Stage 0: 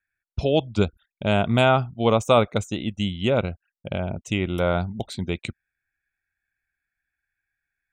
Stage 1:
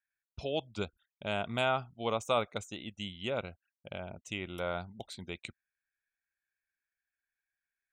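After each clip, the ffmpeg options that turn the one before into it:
ffmpeg -i in.wav -af "lowshelf=frequency=440:gain=-10,volume=-9dB" out.wav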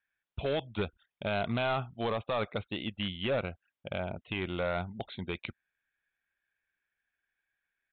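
ffmpeg -i in.wav -af "alimiter=level_in=0.5dB:limit=-24dB:level=0:latency=1:release=36,volume=-0.5dB,aresample=8000,volume=32.5dB,asoftclip=hard,volume=-32.5dB,aresample=44100,volume=7dB" out.wav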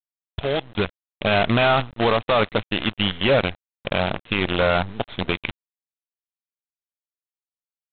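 ffmpeg -i in.wav -af "aresample=8000,acrusher=bits=6:dc=4:mix=0:aa=0.000001,aresample=44100,dynaudnorm=framelen=160:gausssize=11:maxgain=6dB,volume=6dB" out.wav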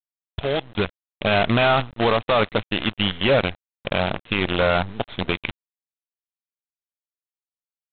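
ffmpeg -i in.wav -af anull out.wav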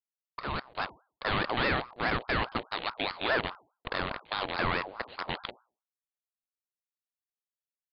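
ffmpeg -i in.wav -af "bandreject=frequency=60:width_type=h:width=6,bandreject=frequency=120:width_type=h:width=6,bandreject=frequency=180:width_type=h:width=6,bandreject=frequency=240:width_type=h:width=6,bandreject=frequency=300:width_type=h:width=6,bandreject=frequency=360:width_type=h:width=6,bandreject=frequency=420:width_type=h:width=6,aeval=exprs='val(0)*sin(2*PI*850*n/s+850*0.45/4.8*sin(2*PI*4.8*n/s))':channel_layout=same,volume=-7.5dB" out.wav

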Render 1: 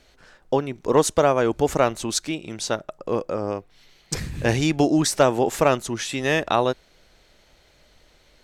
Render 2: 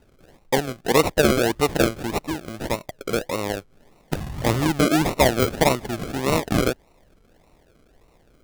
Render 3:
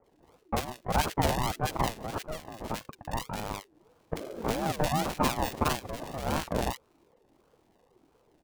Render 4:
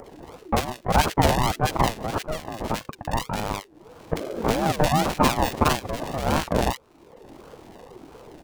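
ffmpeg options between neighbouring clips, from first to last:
ffmpeg -i in.wav -af "acrusher=samples=38:mix=1:aa=0.000001:lfo=1:lforange=22.8:lforate=1.7" out.wav
ffmpeg -i in.wav -filter_complex "[0:a]acrossover=split=1500[link_01][link_02];[link_02]adelay=40[link_03];[link_01][link_03]amix=inputs=2:normalize=0,aeval=exprs='val(0)*sin(2*PI*400*n/s+400*0.25/2.8*sin(2*PI*2.8*n/s))':channel_layout=same,volume=-6dB" out.wav
ffmpeg -i in.wav -filter_complex "[0:a]highshelf=frequency=8300:gain=-4,asplit=2[link_01][link_02];[link_02]acompressor=mode=upward:threshold=-30dB:ratio=2.5,volume=0dB[link_03];[link_01][link_03]amix=inputs=2:normalize=0,volume=1.5dB" out.wav

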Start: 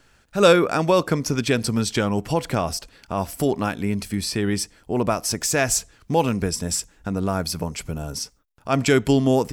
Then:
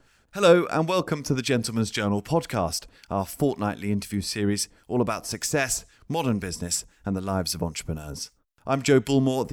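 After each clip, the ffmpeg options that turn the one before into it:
ffmpeg -i in.wav -filter_complex "[0:a]acrossover=split=1200[link_01][link_02];[link_01]aeval=exprs='val(0)*(1-0.7/2+0.7/2*cos(2*PI*3.8*n/s))':channel_layout=same[link_03];[link_02]aeval=exprs='val(0)*(1-0.7/2-0.7/2*cos(2*PI*3.8*n/s))':channel_layout=same[link_04];[link_03][link_04]amix=inputs=2:normalize=0" out.wav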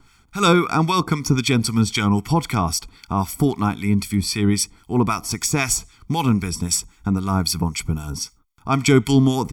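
ffmpeg -i in.wav -af "aecho=1:1:0.9:0.87,volume=3.5dB" out.wav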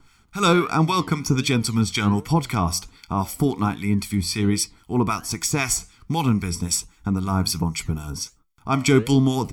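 ffmpeg -i in.wav -af "flanger=delay=6:depth=5.6:regen=83:speed=1.3:shape=sinusoidal,volume=2.5dB" out.wav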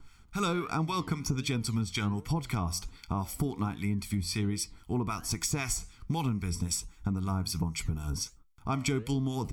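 ffmpeg -i in.wav -af "lowshelf=frequency=95:gain=10,acompressor=threshold=-23dB:ratio=5,volume=-4.5dB" out.wav

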